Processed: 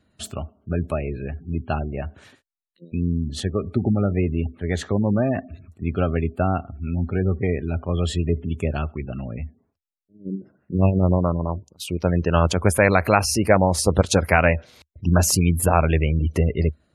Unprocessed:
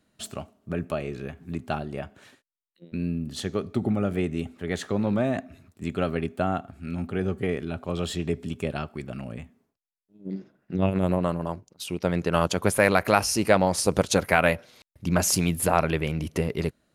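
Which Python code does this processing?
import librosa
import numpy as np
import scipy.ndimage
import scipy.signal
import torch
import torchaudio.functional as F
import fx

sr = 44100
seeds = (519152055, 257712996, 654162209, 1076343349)

y = fx.spec_gate(x, sr, threshold_db=-25, keep='strong')
y = fx.peak_eq(y, sr, hz=76.0, db=12.5, octaves=0.79)
y = y * librosa.db_to_amplitude(3.0)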